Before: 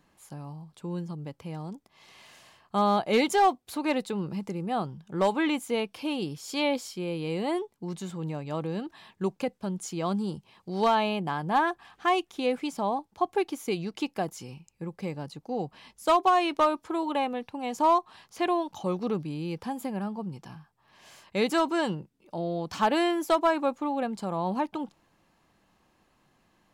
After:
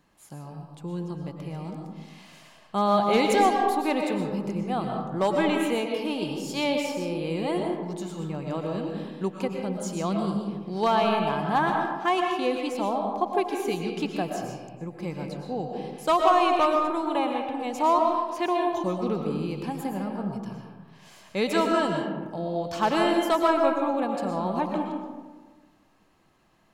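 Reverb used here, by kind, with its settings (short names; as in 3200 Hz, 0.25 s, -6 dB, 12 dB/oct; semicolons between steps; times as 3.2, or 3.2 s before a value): digital reverb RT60 1.4 s, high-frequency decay 0.4×, pre-delay 80 ms, DRR 1.5 dB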